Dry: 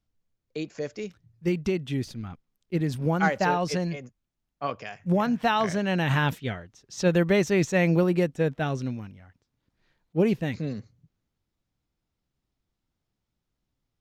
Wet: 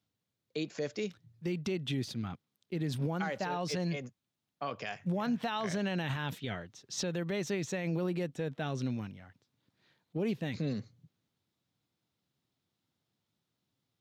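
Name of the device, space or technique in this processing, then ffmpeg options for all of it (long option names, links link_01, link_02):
broadcast voice chain: -af "highpass=frequency=100:width=0.5412,highpass=frequency=100:width=1.3066,deesser=0.65,acompressor=threshold=-29dB:ratio=3,equalizer=frequency=3700:width_type=o:width=0.63:gain=5.5,alimiter=level_in=1dB:limit=-24dB:level=0:latency=1:release=44,volume=-1dB"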